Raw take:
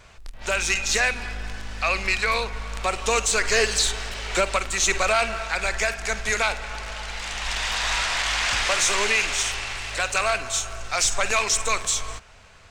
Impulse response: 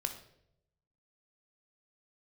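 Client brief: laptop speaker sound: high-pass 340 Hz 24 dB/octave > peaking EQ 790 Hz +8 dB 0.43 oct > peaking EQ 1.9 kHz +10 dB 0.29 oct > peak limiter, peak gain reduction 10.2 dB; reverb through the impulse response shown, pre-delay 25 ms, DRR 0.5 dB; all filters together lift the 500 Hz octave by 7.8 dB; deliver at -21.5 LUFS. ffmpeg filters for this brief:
-filter_complex "[0:a]equalizer=f=500:t=o:g=8,asplit=2[s0][s1];[1:a]atrim=start_sample=2205,adelay=25[s2];[s1][s2]afir=irnorm=-1:irlink=0,volume=0.794[s3];[s0][s3]amix=inputs=2:normalize=0,highpass=f=340:w=0.5412,highpass=f=340:w=1.3066,equalizer=f=790:t=o:w=0.43:g=8,equalizer=f=1900:t=o:w=0.29:g=10,volume=0.794,alimiter=limit=0.251:level=0:latency=1"

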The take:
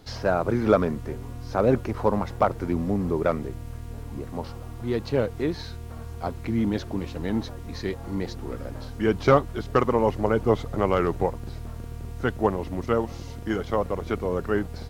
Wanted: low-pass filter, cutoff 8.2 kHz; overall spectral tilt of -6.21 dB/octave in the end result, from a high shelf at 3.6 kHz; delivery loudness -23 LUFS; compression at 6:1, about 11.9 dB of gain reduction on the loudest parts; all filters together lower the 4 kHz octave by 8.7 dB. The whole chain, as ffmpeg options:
-af "lowpass=8200,highshelf=f=3600:g=-8,equalizer=f=4000:t=o:g=-6,acompressor=threshold=0.0447:ratio=6,volume=3.55"

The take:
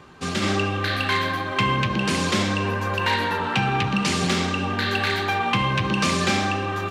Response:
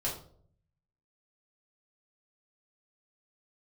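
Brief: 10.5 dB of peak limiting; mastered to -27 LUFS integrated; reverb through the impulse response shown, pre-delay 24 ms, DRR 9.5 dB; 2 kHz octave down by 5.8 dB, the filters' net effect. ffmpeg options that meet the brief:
-filter_complex "[0:a]equalizer=f=2000:t=o:g=-8,alimiter=limit=0.0794:level=0:latency=1,asplit=2[s0][s1];[1:a]atrim=start_sample=2205,adelay=24[s2];[s1][s2]afir=irnorm=-1:irlink=0,volume=0.2[s3];[s0][s3]amix=inputs=2:normalize=0,volume=1.33"

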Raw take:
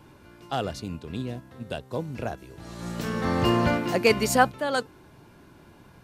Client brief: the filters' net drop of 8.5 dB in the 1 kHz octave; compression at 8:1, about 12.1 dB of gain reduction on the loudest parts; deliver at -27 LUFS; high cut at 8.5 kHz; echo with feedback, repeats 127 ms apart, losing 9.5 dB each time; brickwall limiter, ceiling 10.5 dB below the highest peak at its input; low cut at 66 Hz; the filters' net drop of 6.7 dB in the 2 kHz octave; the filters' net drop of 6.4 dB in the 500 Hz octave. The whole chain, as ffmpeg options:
-af "highpass=66,lowpass=8500,equalizer=f=500:t=o:g=-5.5,equalizer=f=1000:t=o:g=-8.5,equalizer=f=2000:t=o:g=-5.5,acompressor=threshold=0.0224:ratio=8,alimiter=level_in=2.66:limit=0.0631:level=0:latency=1,volume=0.376,aecho=1:1:127|254|381|508:0.335|0.111|0.0365|0.012,volume=5.62"

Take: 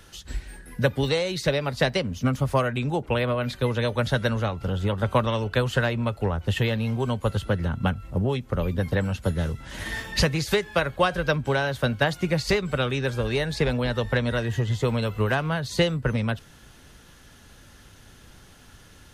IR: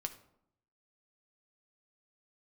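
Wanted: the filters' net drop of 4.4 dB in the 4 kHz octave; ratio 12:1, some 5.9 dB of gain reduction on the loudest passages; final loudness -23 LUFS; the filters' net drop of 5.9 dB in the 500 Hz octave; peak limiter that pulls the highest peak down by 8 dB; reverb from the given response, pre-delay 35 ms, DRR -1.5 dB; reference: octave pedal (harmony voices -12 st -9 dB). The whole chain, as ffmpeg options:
-filter_complex "[0:a]equalizer=f=500:t=o:g=-7,equalizer=f=4000:t=o:g=-5.5,acompressor=threshold=0.0562:ratio=12,alimiter=limit=0.0708:level=0:latency=1,asplit=2[s0][s1];[1:a]atrim=start_sample=2205,adelay=35[s2];[s1][s2]afir=irnorm=-1:irlink=0,volume=1.33[s3];[s0][s3]amix=inputs=2:normalize=0,asplit=2[s4][s5];[s5]asetrate=22050,aresample=44100,atempo=2,volume=0.355[s6];[s4][s6]amix=inputs=2:normalize=0,volume=2"

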